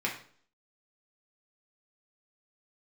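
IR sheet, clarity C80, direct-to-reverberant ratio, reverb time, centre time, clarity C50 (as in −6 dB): 12.0 dB, −3.0 dB, 0.50 s, 23 ms, 8.0 dB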